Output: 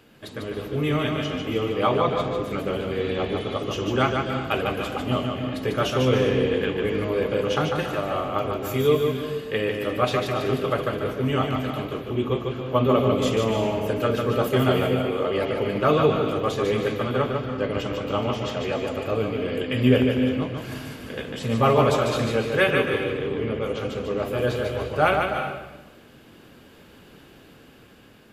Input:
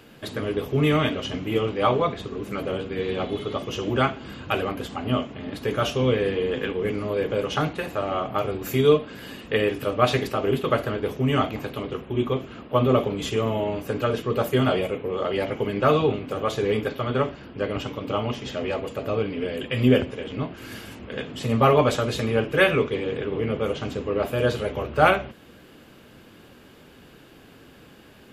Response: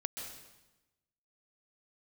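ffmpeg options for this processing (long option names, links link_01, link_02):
-filter_complex "[0:a]dynaudnorm=framelen=440:gausssize=7:maxgain=6.5dB,asplit=2[link_01][link_02];[1:a]atrim=start_sample=2205,adelay=148[link_03];[link_02][link_03]afir=irnorm=-1:irlink=0,volume=-3dB[link_04];[link_01][link_04]amix=inputs=2:normalize=0,volume=-5dB"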